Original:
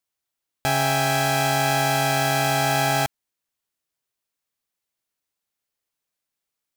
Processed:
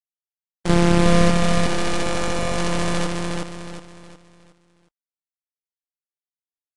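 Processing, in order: sample sorter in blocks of 256 samples; 0.69–1.3 RIAA curve playback; 2.02–2.58 notch comb 780 Hz; half-wave rectifier; bit-crush 4-bit; feedback echo 0.364 s, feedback 37%, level -3 dB; gain +1 dB; Vorbis 64 kbps 22050 Hz

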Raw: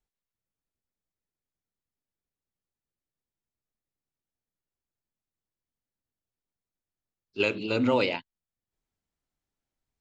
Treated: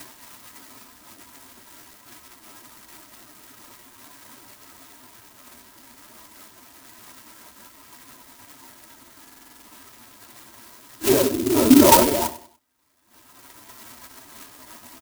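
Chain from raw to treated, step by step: in parallel at +2.5 dB: upward compressor, threshold -30 dBFS; on the sum: LPC vocoder at 8 kHz whisper; HPF 54 Hz 6 dB/oct; tilt +3 dB/oct; time stretch by phase-locked vocoder 1.5×; comb 3.1 ms, depth 77%; treble ducked by the level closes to 600 Hz, closed at -21 dBFS; graphic EQ 125/250/1000/2000 Hz +7/+11/+12/+12 dB; on a send: feedback echo 97 ms, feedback 33%, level -15 dB; on the sum: stuck buffer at 9.23, samples 2048, times 8; clock jitter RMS 0.13 ms

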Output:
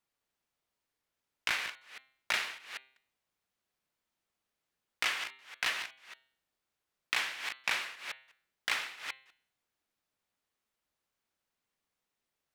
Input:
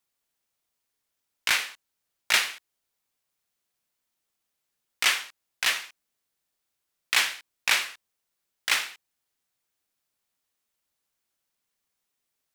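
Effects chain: reverse delay 0.198 s, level -13 dB; high shelf 4500 Hz -11 dB; compressor 5:1, threshold -28 dBFS, peak gain reduction 8.5 dB; de-hum 132.1 Hz, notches 33

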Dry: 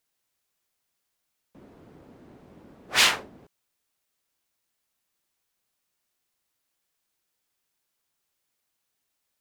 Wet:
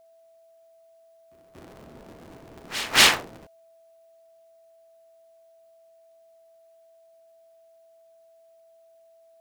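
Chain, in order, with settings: cycle switcher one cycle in 3, inverted; pre-echo 0.234 s -15.5 dB; whine 660 Hz -58 dBFS; gain +4 dB

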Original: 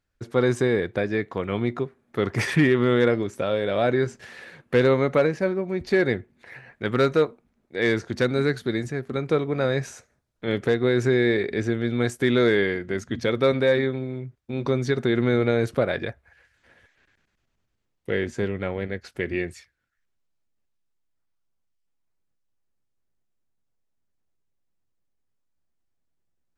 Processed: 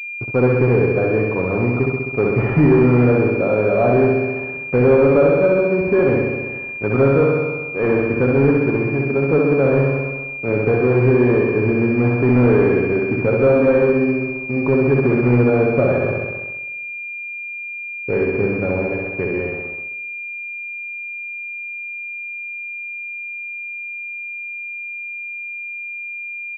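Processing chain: comb 7.2 ms, depth 33%; on a send: flutter echo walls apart 11.2 m, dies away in 1.4 s; on the sum: sample leveller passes 2; pulse-width modulation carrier 2400 Hz; gain -2 dB

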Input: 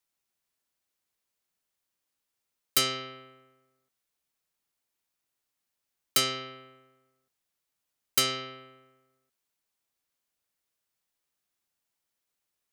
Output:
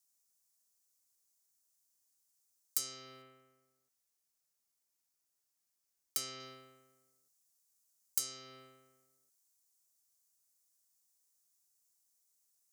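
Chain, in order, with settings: resonant high shelf 4400 Hz +13 dB, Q 1.5, from 3.22 s +7.5 dB, from 6.4 s +14 dB; compressor 3:1, threshold -30 dBFS, peak gain reduction 17.5 dB; gain -7 dB

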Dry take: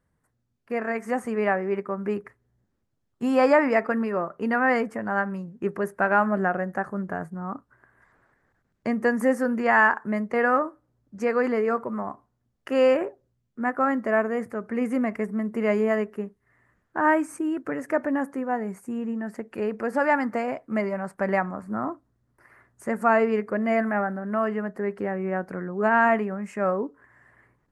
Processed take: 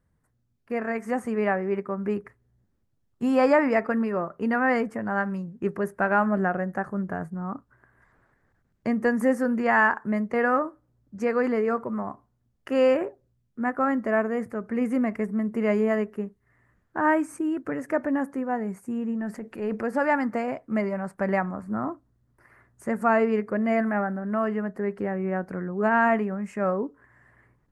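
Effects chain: 5.2–5.75 dynamic EQ 5100 Hz, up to +6 dB, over -48 dBFS, Q 0.75; 19.15–19.83 transient shaper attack -6 dB, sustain +5 dB; low shelf 200 Hz +7 dB; gain -2 dB

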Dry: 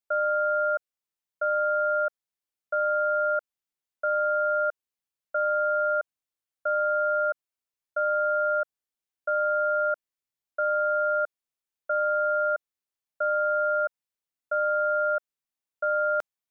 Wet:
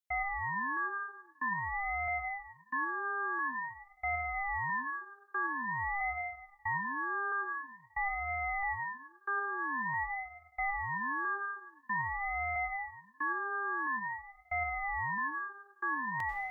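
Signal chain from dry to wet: HPF 1300 Hz 12 dB/oct; plate-style reverb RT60 1.4 s, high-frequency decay 0.85×, pre-delay 80 ms, DRR 2.5 dB; ring modulator with a swept carrier 440 Hz, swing 55%, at 0.48 Hz

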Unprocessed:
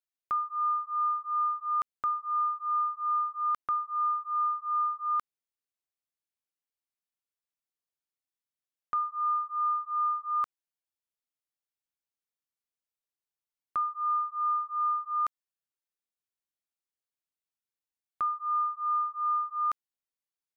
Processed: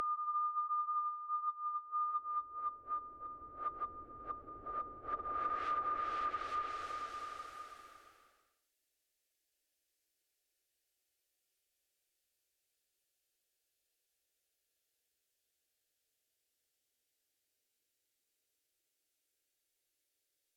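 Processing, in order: Paulstretch 29×, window 0.25 s, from 15.09; treble ducked by the level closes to 320 Hz, closed at -25 dBFS; fixed phaser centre 430 Hz, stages 4; gain +11.5 dB

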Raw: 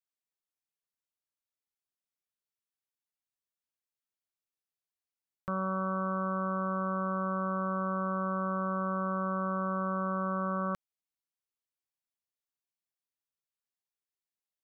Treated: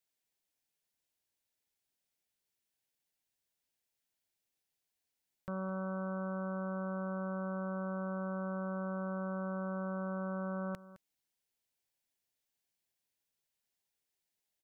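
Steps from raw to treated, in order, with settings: bell 1200 Hz -10 dB 0.4 oct; limiter -38 dBFS, peak gain reduction 11.5 dB; echo 0.213 s -16.5 dB; gain +7 dB

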